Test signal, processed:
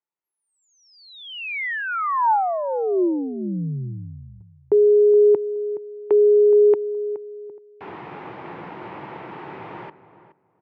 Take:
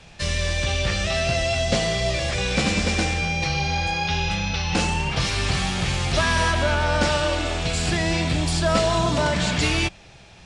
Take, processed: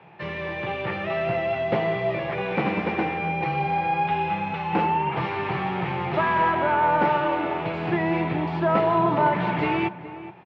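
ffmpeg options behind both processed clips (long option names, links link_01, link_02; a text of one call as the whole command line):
ffmpeg -i in.wav -filter_complex "[0:a]highpass=frequency=140:width=0.5412,highpass=frequency=140:width=1.3066,equalizer=frequency=240:width_type=q:width=4:gain=-8,equalizer=frequency=360:width_type=q:width=4:gain=7,equalizer=frequency=580:width_type=q:width=4:gain=-3,equalizer=frequency=890:width_type=q:width=4:gain=8,equalizer=frequency=1600:width_type=q:width=4:gain=-4,lowpass=frequency=2200:width=0.5412,lowpass=frequency=2200:width=1.3066,asplit=2[link_01][link_02];[link_02]adelay=421,lowpass=frequency=1600:poles=1,volume=-13.5dB,asplit=2[link_03][link_04];[link_04]adelay=421,lowpass=frequency=1600:poles=1,volume=0.19[link_05];[link_03][link_05]amix=inputs=2:normalize=0[link_06];[link_01][link_06]amix=inputs=2:normalize=0" out.wav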